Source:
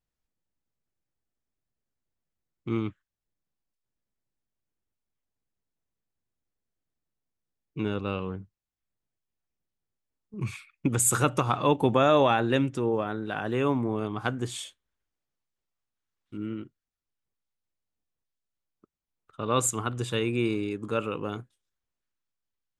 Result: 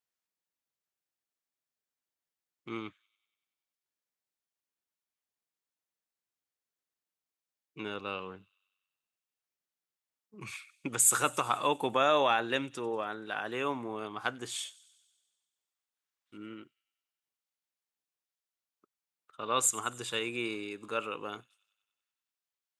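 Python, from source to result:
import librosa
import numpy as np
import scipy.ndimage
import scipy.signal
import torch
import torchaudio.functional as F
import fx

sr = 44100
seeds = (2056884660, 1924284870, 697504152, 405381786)

p1 = fx.highpass(x, sr, hz=980.0, slope=6)
y = p1 + fx.echo_wet_highpass(p1, sr, ms=95, feedback_pct=65, hz=3800.0, wet_db=-19, dry=0)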